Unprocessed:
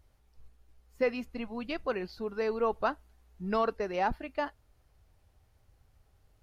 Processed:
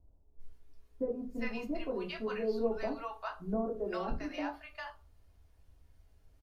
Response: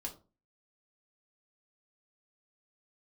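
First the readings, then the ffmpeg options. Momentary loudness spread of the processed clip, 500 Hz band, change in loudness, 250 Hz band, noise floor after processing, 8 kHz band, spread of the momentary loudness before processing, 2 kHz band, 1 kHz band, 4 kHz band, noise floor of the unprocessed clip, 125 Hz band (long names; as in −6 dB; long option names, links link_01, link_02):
8 LU, −3.5 dB, −4.5 dB, 0.0 dB, −65 dBFS, can't be measured, 9 LU, −5.0 dB, −8.0 dB, −2.5 dB, −68 dBFS, −1.5 dB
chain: -filter_complex "[0:a]acrossover=split=830[link_01][link_02];[link_02]adelay=400[link_03];[link_01][link_03]amix=inputs=2:normalize=0,acrossover=split=400[link_04][link_05];[link_05]acompressor=threshold=-34dB:ratio=6[link_06];[link_04][link_06]amix=inputs=2:normalize=0[link_07];[1:a]atrim=start_sample=2205[link_08];[link_07][link_08]afir=irnorm=-1:irlink=0"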